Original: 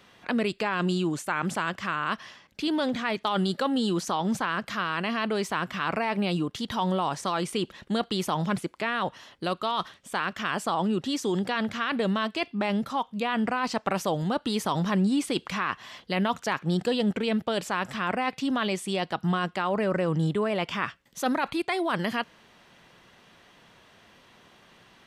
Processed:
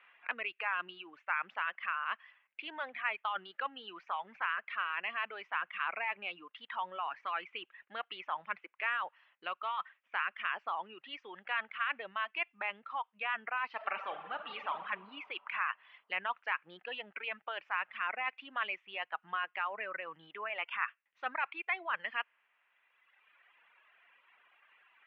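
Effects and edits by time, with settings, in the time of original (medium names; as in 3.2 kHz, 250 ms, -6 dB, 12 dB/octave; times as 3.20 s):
13.67–14.74 s: reverb throw, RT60 2.6 s, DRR 0.5 dB
whole clip: elliptic low-pass 2.6 kHz, stop band 80 dB; reverb removal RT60 2 s; high-pass 1.4 kHz 12 dB/octave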